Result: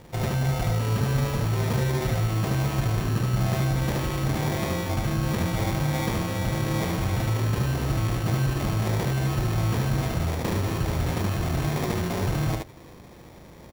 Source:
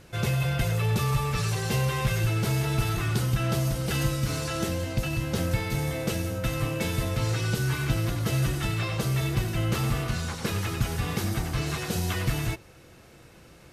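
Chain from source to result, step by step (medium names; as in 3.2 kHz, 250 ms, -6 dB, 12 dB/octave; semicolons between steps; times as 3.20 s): in parallel at -2.5 dB: compressor with a negative ratio -31 dBFS, ratio -1; on the sum: sample-and-hold 31×; delay 74 ms -3 dB; sliding maximum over 3 samples; trim -3 dB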